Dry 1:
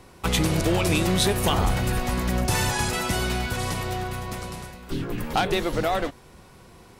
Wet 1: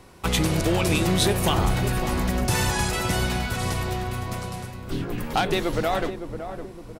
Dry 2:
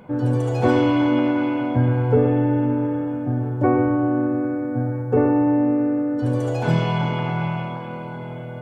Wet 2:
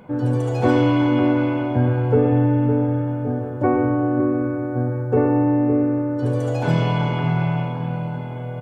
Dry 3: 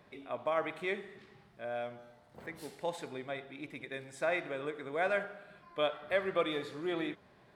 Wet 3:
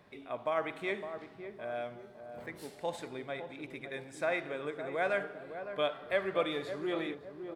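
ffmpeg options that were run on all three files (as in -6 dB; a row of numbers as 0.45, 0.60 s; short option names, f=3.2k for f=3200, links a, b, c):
-filter_complex "[0:a]asplit=2[a][b];[b]adelay=560,lowpass=f=800:p=1,volume=-7.5dB,asplit=2[c][d];[d]adelay=560,lowpass=f=800:p=1,volume=0.47,asplit=2[e][f];[f]adelay=560,lowpass=f=800:p=1,volume=0.47,asplit=2[g][h];[h]adelay=560,lowpass=f=800:p=1,volume=0.47,asplit=2[i][j];[j]adelay=560,lowpass=f=800:p=1,volume=0.47[k];[a][c][e][g][i][k]amix=inputs=6:normalize=0"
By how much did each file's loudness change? 0.0, +0.5, 0.0 LU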